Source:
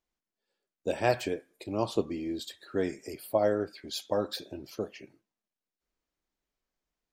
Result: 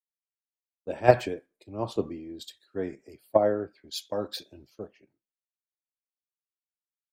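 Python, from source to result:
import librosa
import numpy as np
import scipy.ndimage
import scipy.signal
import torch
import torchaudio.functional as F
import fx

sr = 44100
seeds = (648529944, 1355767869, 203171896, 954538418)

p1 = fx.high_shelf(x, sr, hz=3000.0, db=-7.5)
p2 = fx.level_steps(p1, sr, step_db=23)
p3 = p1 + (p2 * 10.0 ** (-0.5 / 20.0))
p4 = fx.band_widen(p3, sr, depth_pct=100)
y = p4 * 10.0 ** (-3.0 / 20.0)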